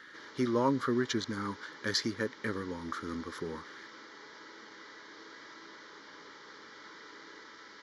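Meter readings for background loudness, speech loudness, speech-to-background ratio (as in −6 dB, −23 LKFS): −50.0 LKFS, −34.0 LKFS, 16.0 dB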